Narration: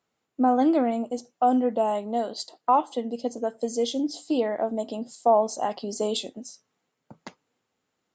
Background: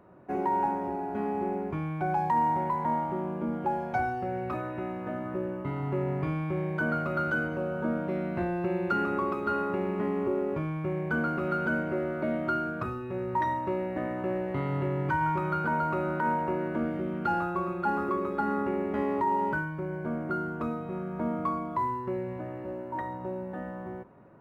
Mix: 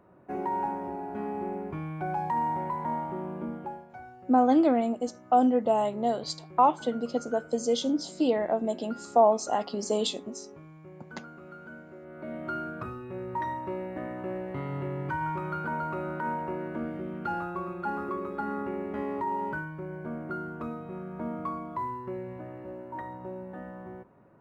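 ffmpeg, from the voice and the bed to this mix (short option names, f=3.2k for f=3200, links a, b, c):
-filter_complex "[0:a]adelay=3900,volume=-0.5dB[a];[1:a]volume=10dB,afade=t=out:st=3.42:d=0.44:silence=0.199526,afade=t=in:st=12.02:d=0.58:silence=0.223872[b];[a][b]amix=inputs=2:normalize=0"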